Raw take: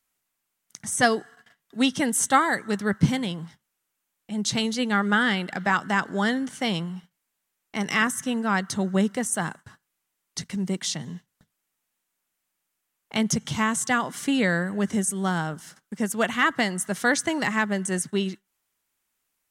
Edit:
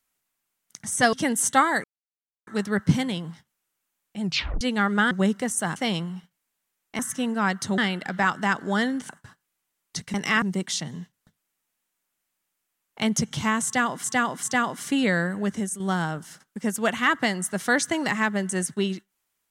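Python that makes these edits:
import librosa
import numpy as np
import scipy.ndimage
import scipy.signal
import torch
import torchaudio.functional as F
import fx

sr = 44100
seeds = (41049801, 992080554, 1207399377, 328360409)

y = fx.edit(x, sr, fx.cut(start_s=1.13, length_s=0.77),
    fx.insert_silence(at_s=2.61, length_s=0.63),
    fx.tape_stop(start_s=4.37, length_s=0.38),
    fx.swap(start_s=5.25, length_s=1.31, other_s=8.86, other_length_s=0.65),
    fx.move(start_s=7.79, length_s=0.28, to_s=10.56),
    fx.repeat(start_s=13.79, length_s=0.39, count=3),
    fx.fade_out_to(start_s=14.71, length_s=0.45, floor_db=-7.0), tone=tone)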